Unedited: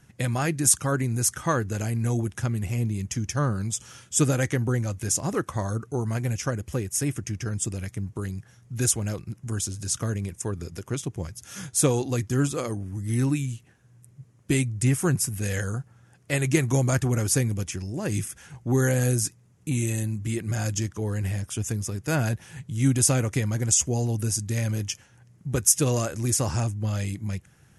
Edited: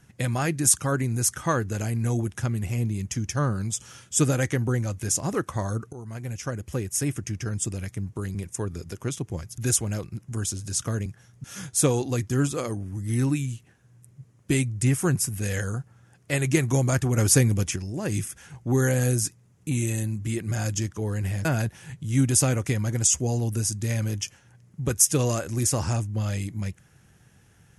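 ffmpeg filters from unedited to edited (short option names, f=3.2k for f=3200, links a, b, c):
-filter_complex "[0:a]asplit=9[a][b][c][d][e][f][g][h][i];[a]atrim=end=5.93,asetpts=PTS-STARTPTS,afade=t=out:st=5.926:d=0.004:c=hsin:silence=0.188365[j];[b]atrim=start=5.93:end=8.352,asetpts=PTS-STARTPTS,afade=t=in:d=0.93:silence=0.188365[k];[c]atrim=start=10.208:end=11.442[l];[d]atrim=start=8.728:end=10.212[m];[e]atrim=start=8.348:end=8.732[n];[f]atrim=start=11.438:end=17.182[o];[g]atrim=start=17.178:end=17.762,asetpts=PTS-STARTPTS,volume=4.5dB[p];[h]atrim=start=17.758:end=21.452[q];[i]atrim=start=22.118[r];[j][k]concat=n=2:v=0:a=1[s];[s][l]acrossfade=d=0.004:c1=hsin:c2=hsin[t];[t][m]acrossfade=d=0.004:c1=hsin:c2=hsin[u];[u][n]acrossfade=d=0.004:c1=hsin:c2=hsin[v];[v][o]acrossfade=d=0.004:c1=hsin:c2=hsin[w];[w][p]acrossfade=d=0.004:c1=hsin:c2=hsin[x];[x][q]acrossfade=d=0.004:c1=hsin:c2=hsin[y];[y][r]acrossfade=d=0.004:c1=hsin:c2=hsin"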